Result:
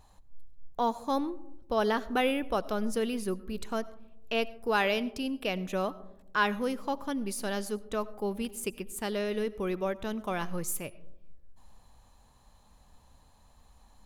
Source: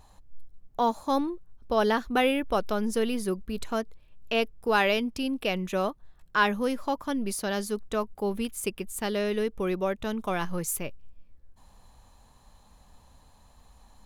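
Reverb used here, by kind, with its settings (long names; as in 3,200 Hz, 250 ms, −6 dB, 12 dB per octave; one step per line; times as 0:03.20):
comb and all-pass reverb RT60 0.88 s, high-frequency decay 0.25×, pre-delay 50 ms, DRR 18.5 dB
level −3.5 dB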